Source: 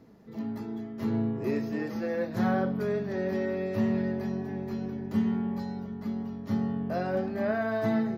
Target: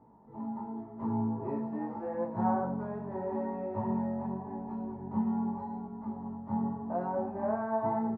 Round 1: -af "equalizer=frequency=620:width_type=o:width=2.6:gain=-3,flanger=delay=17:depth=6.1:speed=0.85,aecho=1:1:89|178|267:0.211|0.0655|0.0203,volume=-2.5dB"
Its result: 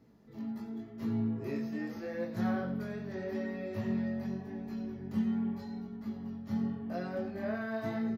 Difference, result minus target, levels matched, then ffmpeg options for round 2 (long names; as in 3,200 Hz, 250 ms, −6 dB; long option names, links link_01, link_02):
1,000 Hz band −10.0 dB
-af "lowpass=frequency=920:width_type=q:width=11,equalizer=frequency=620:width_type=o:width=2.6:gain=-3,flanger=delay=17:depth=6.1:speed=0.85,aecho=1:1:89|178|267:0.211|0.0655|0.0203,volume=-2.5dB"